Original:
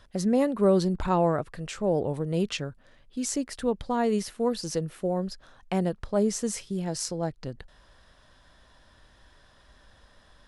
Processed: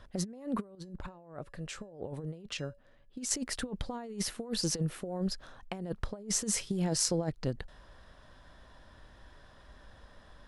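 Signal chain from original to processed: compressor with a negative ratio -31 dBFS, ratio -0.5; 0.75–3.31 s: feedback comb 570 Hz, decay 0.28 s, harmonics odd, mix 60%; tape noise reduction on one side only decoder only; trim -2 dB

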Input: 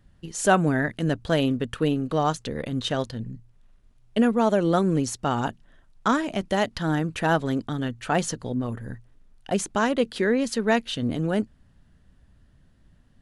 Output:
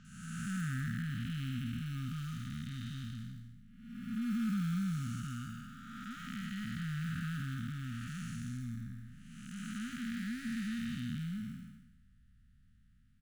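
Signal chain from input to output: spectral blur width 524 ms; in parallel at -10.5 dB: sample-and-hold 23×; on the sum: brick-wall FIR band-stop 260–1200 Hz; bands offset in time lows, highs 50 ms, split 5.1 kHz; trim -8 dB

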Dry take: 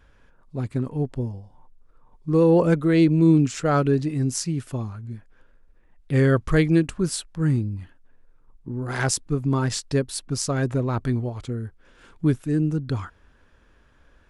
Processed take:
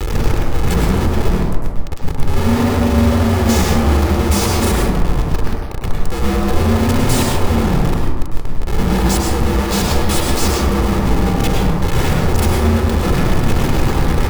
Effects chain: zero-crossing glitches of -16.5 dBFS; peaking EQ 160 Hz +14 dB 1.4 oct; ring modulator 330 Hz; frequency shift -400 Hz; Schmitt trigger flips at -22.5 dBFS; feedback echo behind a band-pass 77 ms, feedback 71%, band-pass 690 Hz, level -4.5 dB; reverberation RT60 0.70 s, pre-delay 97 ms, DRR 0 dB; trim -4.5 dB

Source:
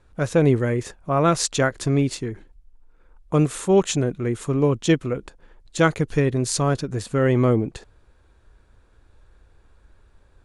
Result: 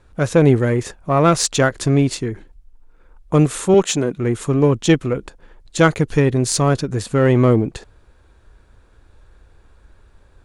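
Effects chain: 3.74–4.17 s: high-pass 170 Hz; in parallel at -9 dB: one-sided clip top -23.5 dBFS; on the sum: trim +2.5 dB

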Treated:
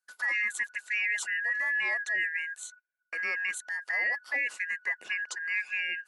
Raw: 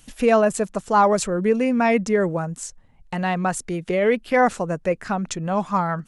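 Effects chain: four frequency bands reordered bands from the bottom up 2143; gate -40 dBFS, range -28 dB; high-pass 560 Hz 12 dB/octave; peak limiter -13.5 dBFS, peak gain reduction 7.5 dB; trim -8.5 dB

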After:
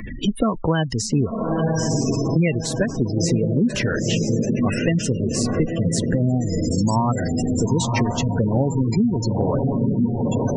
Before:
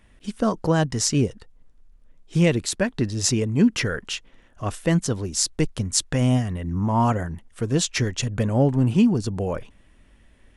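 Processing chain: echo that smears into a reverb 949 ms, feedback 64%, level -4.5 dB; spectral gate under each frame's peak -20 dB strong; three bands compressed up and down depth 100%

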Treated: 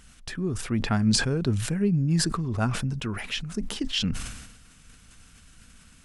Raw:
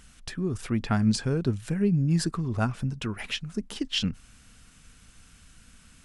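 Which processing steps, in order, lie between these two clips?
decay stretcher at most 54 dB/s

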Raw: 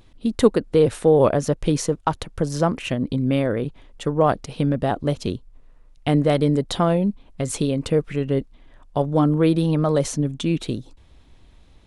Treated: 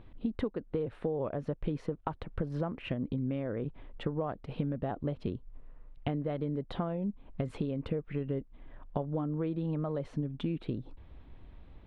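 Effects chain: compression 12:1, threshold -29 dBFS, peak gain reduction 20.5 dB; distance through air 460 m

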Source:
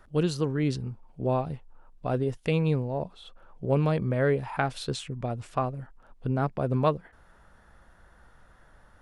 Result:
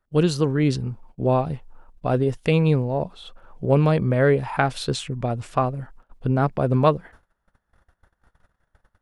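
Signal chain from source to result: gate -51 dBFS, range -27 dB; trim +6.5 dB

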